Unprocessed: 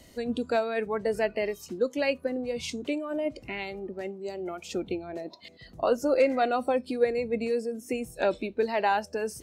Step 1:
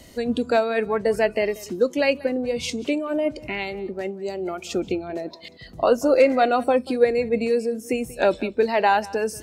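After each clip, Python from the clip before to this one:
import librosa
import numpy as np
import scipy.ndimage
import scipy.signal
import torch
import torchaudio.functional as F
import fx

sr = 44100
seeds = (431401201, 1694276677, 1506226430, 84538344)

y = x + 10.0 ** (-20.5 / 20.0) * np.pad(x, (int(186 * sr / 1000.0), 0))[:len(x)]
y = y * 10.0 ** (6.5 / 20.0)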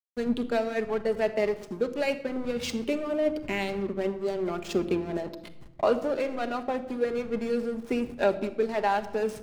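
y = fx.rider(x, sr, range_db=5, speed_s=0.5)
y = fx.backlash(y, sr, play_db=-25.5)
y = fx.room_shoebox(y, sr, seeds[0], volume_m3=3400.0, walls='furnished', distance_m=1.3)
y = y * 10.0 ** (-6.5 / 20.0)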